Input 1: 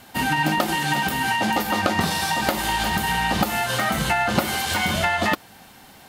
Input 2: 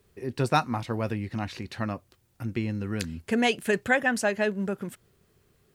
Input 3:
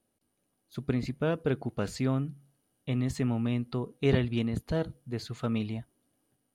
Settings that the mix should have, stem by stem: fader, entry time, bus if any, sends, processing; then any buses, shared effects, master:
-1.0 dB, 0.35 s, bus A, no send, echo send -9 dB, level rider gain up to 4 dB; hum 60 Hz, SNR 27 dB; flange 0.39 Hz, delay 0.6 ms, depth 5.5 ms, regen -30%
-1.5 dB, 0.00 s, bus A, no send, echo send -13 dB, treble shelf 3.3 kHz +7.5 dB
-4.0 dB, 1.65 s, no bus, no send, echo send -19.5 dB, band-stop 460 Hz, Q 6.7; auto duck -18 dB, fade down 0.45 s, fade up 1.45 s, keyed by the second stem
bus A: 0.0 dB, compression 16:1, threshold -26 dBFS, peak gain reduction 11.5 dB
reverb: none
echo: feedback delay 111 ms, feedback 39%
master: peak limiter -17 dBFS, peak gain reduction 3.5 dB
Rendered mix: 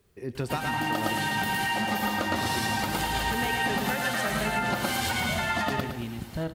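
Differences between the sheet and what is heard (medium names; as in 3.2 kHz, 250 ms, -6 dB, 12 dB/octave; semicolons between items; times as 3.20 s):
stem 2: missing treble shelf 3.3 kHz +7.5 dB; stem 3 -4.0 dB -> +5.5 dB; master: missing peak limiter -17 dBFS, peak gain reduction 3.5 dB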